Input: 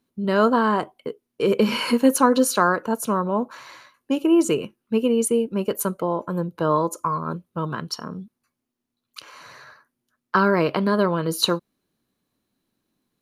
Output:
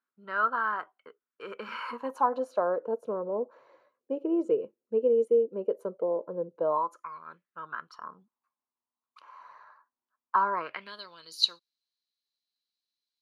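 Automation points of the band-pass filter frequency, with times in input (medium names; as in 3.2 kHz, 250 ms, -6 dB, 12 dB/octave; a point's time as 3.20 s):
band-pass filter, Q 4.2
1.72 s 1.4 kHz
2.80 s 490 Hz
6.59 s 490 Hz
7.10 s 2.4 kHz
8.20 s 990 Hz
10.54 s 990 Hz
11.02 s 4.4 kHz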